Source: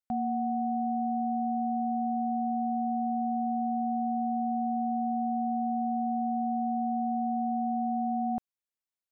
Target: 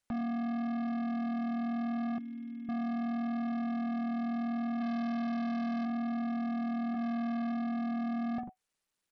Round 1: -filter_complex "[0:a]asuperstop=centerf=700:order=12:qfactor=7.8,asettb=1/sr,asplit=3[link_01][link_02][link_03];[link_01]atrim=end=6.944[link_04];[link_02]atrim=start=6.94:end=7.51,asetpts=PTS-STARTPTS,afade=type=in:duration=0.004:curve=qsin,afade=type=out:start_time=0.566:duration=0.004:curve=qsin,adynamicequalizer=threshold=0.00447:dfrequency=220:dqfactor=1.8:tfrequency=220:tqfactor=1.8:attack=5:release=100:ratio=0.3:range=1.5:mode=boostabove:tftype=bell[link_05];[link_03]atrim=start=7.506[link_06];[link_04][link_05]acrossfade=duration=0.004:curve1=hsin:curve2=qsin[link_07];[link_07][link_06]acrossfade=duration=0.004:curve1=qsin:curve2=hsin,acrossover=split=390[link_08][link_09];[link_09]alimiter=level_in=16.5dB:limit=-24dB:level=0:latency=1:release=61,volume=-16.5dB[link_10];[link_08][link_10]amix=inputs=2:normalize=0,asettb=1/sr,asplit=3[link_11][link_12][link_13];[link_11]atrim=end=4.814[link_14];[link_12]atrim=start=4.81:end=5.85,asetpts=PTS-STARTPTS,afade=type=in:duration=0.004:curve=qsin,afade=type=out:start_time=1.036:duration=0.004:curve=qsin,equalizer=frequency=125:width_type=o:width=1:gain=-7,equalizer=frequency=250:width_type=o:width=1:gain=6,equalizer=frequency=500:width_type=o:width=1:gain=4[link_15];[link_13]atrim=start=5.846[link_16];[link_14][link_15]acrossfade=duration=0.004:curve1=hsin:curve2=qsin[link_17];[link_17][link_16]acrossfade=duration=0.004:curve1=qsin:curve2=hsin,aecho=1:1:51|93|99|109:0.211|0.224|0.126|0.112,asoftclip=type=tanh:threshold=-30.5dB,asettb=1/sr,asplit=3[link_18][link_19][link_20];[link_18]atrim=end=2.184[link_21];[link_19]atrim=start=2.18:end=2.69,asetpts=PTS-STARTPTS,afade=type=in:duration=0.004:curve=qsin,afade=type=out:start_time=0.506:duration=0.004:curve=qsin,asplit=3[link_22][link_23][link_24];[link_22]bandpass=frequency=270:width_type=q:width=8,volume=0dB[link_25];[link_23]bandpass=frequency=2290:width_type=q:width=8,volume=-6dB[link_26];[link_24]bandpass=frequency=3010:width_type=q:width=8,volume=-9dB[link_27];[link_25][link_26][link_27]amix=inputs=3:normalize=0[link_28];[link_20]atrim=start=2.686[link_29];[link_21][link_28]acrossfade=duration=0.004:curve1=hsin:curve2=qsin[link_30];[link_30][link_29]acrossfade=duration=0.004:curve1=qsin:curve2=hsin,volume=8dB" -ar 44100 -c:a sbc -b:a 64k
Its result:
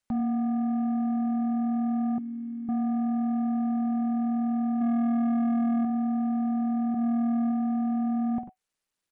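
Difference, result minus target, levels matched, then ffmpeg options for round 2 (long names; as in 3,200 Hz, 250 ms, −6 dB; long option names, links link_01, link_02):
soft clipping: distortion −7 dB
-filter_complex "[0:a]asuperstop=centerf=700:order=12:qfactor=7.8,asettb=1/sr,asplit=3[link_01][link_02][link_03];[link_01]atrim=end=6.944[link_04];[link_02]atrim=start=6.94:end=7.51,asetpts=PTS-STARTPTS,afade=type=in:duration=0.004:curve=qsin,afade=type=out:start_time=0.566:duration=0.004:curve=qsin,adynamicequalizer=threshold=0.00447:dfrequency=220:dqfactor=1.8:tfrequency=220:tqfactor=1.8:attack=5:release=100:ratio=0.3:range=1.5:mode=boostabove:tftype=bell[link_05];[link_03]atrim=start=7.506[link_06];[link_04][link_05]acrossfade=duration=0.004:curve1=hsin:curve2=qsin[link_07];[link_07][link_06]acrossfade=duration=0.004:curve1=qsin:curve2=hsin,acrossover=split=390[link_08][link_09];[link_09]alimiter=level_in=16.5dB:limit=-24dB:level=0:latency=1:release=61,volume=-16.5dB[link_10];[link_08][link_10]amix=inputs=2:normalize=0,asettb=1/sr,asplit=3[link_11][link_12][link_13];[link_11]atrim=end=4.814[link_14];[link_12]atrim=start=4.81:end=5.85,asetpts=PTS-STARTPTS,afade=type=in:duration=0.004:curve=qsin,afade=type=out:start_time=1.036:duration=0.004:curve=qsin,equalizer=frequency=125:width_type=o:width=1:gain=-7,equalizer=frequency=250:width_type=o:width=1:gain=6,equalizer=frequency=500:width_type=o:width=1:gain=4[link_15];[link_13]atrim=start=5.846[link_16];[link_14][link_15]acrossfade=duration=0.004:curve1=hsin:curve2=qsin[link_17];[link_17][link_16]acrossfade=duration=0.004:curve1=qsin:curve2=hsin,aecho=1:1:51|93|99|109:0.211|0.224|0.126|0.112,asoftclip=type=tanh:threshold=-40.5dB,asettb=1/sr,asplit=3[link_18][link_19][link_20];[link_18]atrim=end=2.184[link_21];[link_19]atrim=start=2.18:end=2.69,asetpts=PTS-STARTPTS,afade=type=in:duration=0.004:curve=qsin,afade=type=out:start_time=0.506:duration=0.004:curve=qsin,asplit=3[link_22][link_23][link_24];[link_22]bandpass=frequency=270:width_type=q:width=8,volume=0dB[link_25];[link_23]bandpass=frequency=2290:width_type=q:width=8,volume=-6dB[link_26];[link_24]bandpass=frequency=3010:width_type=q:width=8,volume=-9dB[link_27];[link_25][link_26][link_27]amix=inputs=3:normalize=0[link_28];[link_20]atrim=start=2.686[link_29];[link_21][link_28]acrossfade=duration=0.004:curve1=hsin:curve2=qsin[link_30];[link_30][link_29]acrossfade=duration=0.004:curve1=qsin:curve2=hsin,volume=8dB" -ar 44100 -c:a sbc -b:a 64k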